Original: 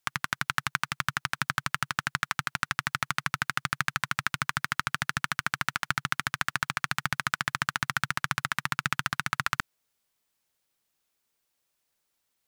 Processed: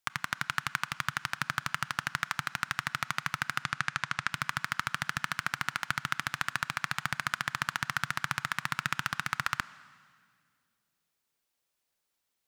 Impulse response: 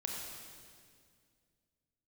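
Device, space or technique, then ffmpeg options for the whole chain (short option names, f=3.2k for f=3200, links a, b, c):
filtered reverb send: -filter_complex "[0:a]asettb=1/sr,asplit=3[a][b][c];[a]atrim=end=3.624[d];[b]atrim=start=3.62:end=4.32,asetpts=PTS-STARTPTS,afade=t=in:d=0.004:c=qsin,afade=t=out:st=0.696:d=0.004:c=qsin,lowpass=8.1k[e];[c]atrim=start=4.316[f];[d][e]acrossfade=d=0.004:c1=hsin:c2=qsin[g];[g][f]acrossfade=d=0.004:c1=qsin:c2=hsin,asplit=2[h][i];[i]highpass=220,lowpass=7.7k[j];[1:a]atrim=start_sample=2205[k];[j][k]afir=irnorm=-1:irlink=0,volume=-14.5dB[l];[h][l]amix=inputs=2:normalize=0,volume=-4dB"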